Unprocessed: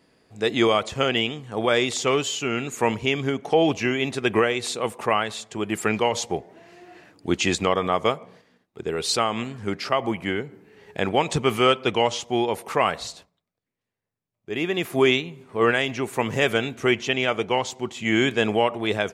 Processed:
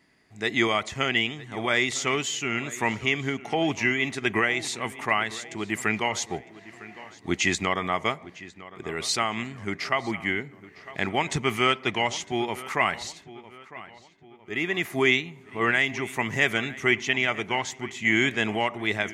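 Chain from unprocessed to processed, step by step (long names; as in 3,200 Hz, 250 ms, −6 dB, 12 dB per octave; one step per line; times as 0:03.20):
thirty-one-band graphic EQ 500 Hz −11 dB, 2,000 Hz +11 dB, 6,300 Hz +4 dB
feedback echo with a low-pass in the loop 955 ms, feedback 45%, low-pass 3,800 Hz, level −17.5 dB
level −3.5 dB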